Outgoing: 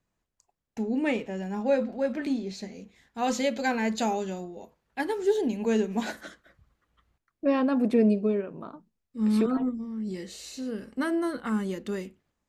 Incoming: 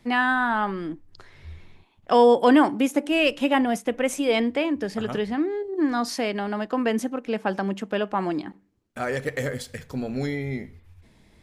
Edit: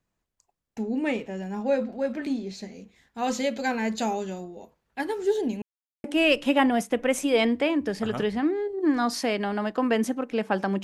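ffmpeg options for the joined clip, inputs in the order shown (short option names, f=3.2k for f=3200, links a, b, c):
-filter_complex "[0:a]apad=whole_dur=10.83,atrim=end=10.83,asplit=2[a][b];[a]atrim=end=5.62,asetpts=PTS-STARTPTS,afade=t=out:st=5.616:d=0.004:c=hsin[c];[b]atrim=start=5.62:end=6.04,asetpts=PTS-STARTPTS,volume=0[d];[1:a]atrim=start=2.99:end=7.78,asetpts=PTS-STARTPTS,afade=t=in:d=0.004:c=hsin[e];[c][d][e]concat=n=3:v=0:a=1"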